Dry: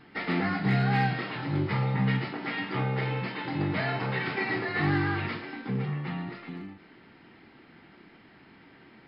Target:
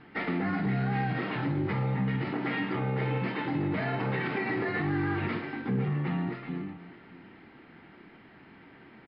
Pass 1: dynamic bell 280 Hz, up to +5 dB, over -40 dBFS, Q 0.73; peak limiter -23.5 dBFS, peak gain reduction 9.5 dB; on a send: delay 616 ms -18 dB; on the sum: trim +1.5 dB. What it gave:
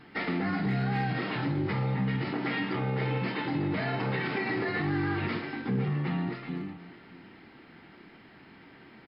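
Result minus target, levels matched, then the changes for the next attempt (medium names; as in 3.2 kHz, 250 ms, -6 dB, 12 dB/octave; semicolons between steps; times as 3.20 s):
4 kHz band +4.0 dB
add after dynamic bell: low-pass 3 kHz 12 dB/octave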